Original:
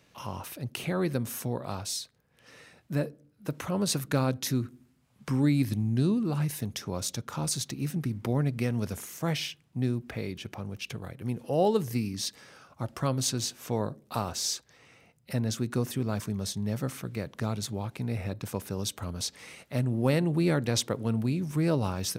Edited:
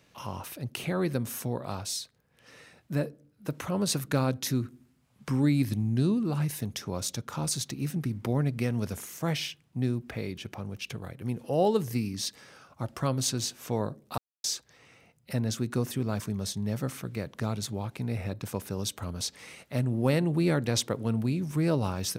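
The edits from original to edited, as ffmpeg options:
ffmpeg -i in.wav -filter_complex "[0:a]asplit=3[link_01][link_02][link_03];[link_01]atrim=end=14.18,asetpts=PTS-STARTPTS,afade=type=out:start_time=14.176:duration=0.004:curve=hsin[link_04];[link_02]atrim=start=14.18:end=14.44,asetpts=PTS-STARTPTS,volume=0[link_05];[link_03]atrim=start=14.44,asetpts=PTS-STARTPTS,afade=type=in:duration=0.004:curve=hsin[link_06];[link_04][link_05][link_06]concat=n=3:v=0:a=1" out.wav

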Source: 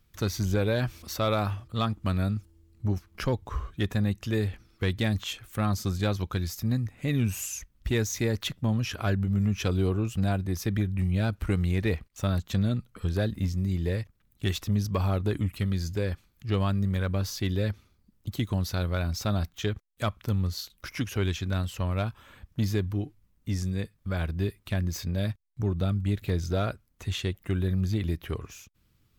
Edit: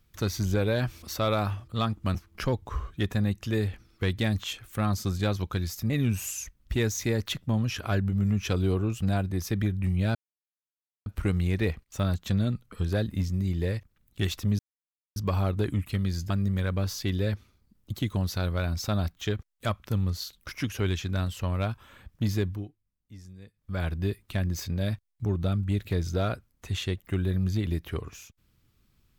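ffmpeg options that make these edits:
ffmpeg -i in.wav -filter_complex "[0:a]asplit=8[link_01][link_02][link_03][link_04][link_05][link_06][link_07][link_08];[link_01]atrim=end=2.152[link_09];[link_02]atrim=start=2.948:end=6.702[link_10];[link_03]atrim=start=7.048:end=11.3,asetpts=PTS-STARTPTS,afade=type=out:start_time=4.248:duration=0.004:curve=hsin,apad=pad_dur=0.91[link_11];[link_04]atrim=start=11.3:end=14.83,asetpts=PTS-STARTPTS,afade=type=in:duration=0.004:curve=hsin,afade=type=out:start_time=3.526:duration=0.004:curve=hsin,apad=pad_dur=0.57[link_12];[link_05]atrim=start=14.83:end=15.972,asetpts=PTS-STARTPTS,afade=type=in:duration=0.004:curve=hsin[link_13];[link_06]atrim=start=16.668:end=23.09,asetpts=PTS-STARTPTS,afade=type=out:start_time=6.152:duration=0.27:silence=0.141254[link_14];[link_07]atrim=start=23.09:end=23.9,asetpts=PTS-STARTPTS,volume=-17dB[link_15];[link_08]atrim=start=23.9,asetpts=PTS-STARTPTS,afade=type=in:duration=0.27:silence=0.141254[link_16];[link_09][link_10]acrossfade=duration=0.004:curve1=hsin:curve2=hsin[link_17];[link_11][link_12][link_13]concat=n=3:v=0:a=1[link_18];[link_17][link_18]acrossfade=duration=0.004:curve1=hsin:curve2=hsin[link_19];[link_14][link_15][link_16]concat=n=3:v=0:a=1[link_20];[link_19][link_20]acrossfade=duration=0.004:curve1=hsin:curve2=hsin" out.wav

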